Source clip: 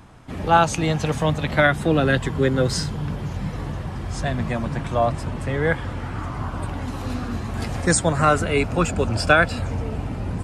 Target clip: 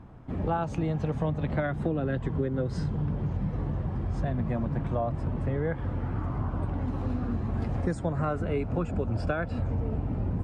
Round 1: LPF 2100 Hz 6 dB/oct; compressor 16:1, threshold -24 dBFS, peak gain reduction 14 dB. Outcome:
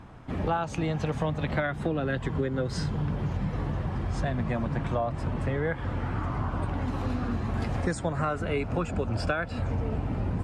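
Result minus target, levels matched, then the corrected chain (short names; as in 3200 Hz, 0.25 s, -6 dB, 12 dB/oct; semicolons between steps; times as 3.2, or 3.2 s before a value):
2000 Hz band +5.5 dB
LPF 540 Hz 6 dB/oct; compressor 16:1, threshold -24 dBFS, peak gain reduction 10.5 dB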